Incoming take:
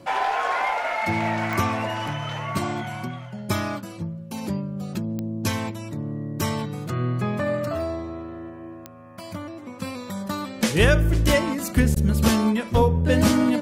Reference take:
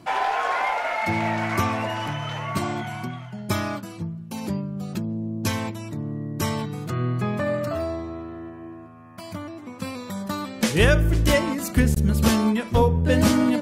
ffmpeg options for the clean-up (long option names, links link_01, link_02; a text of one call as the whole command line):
ffmpeg -i in.wav -af "adeclick=threshold=4,bandreject=frequency=550:width=30" out.wav